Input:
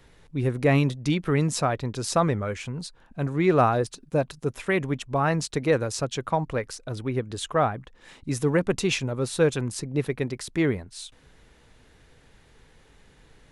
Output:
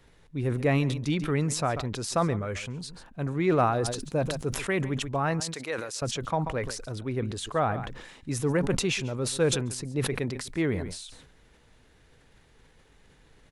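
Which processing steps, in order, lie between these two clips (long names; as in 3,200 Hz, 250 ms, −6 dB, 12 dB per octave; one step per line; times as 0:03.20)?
0:05.40–0:06.02: high-pass filter 1,200 Hz 6 dB per octave
on a send: single-tap delay 139 ms −20 dB
on the sum: level that may fall only so fast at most 53 dB per second
level −4 dB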